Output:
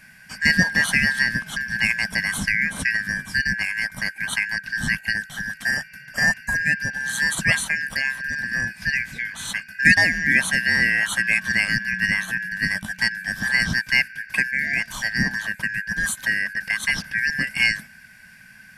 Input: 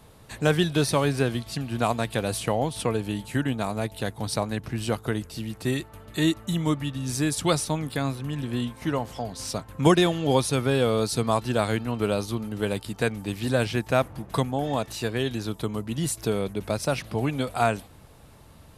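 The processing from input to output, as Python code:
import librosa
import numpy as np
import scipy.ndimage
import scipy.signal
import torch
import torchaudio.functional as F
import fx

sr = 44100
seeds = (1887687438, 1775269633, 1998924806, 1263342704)

y = fx.band_shuffle(x, sr, order='3142')
y = fx.low_shelf_res(y, sr, hz=280.0, db=11.0, q=3.0)
y = y * librosa.db_to_amplitude(3.0)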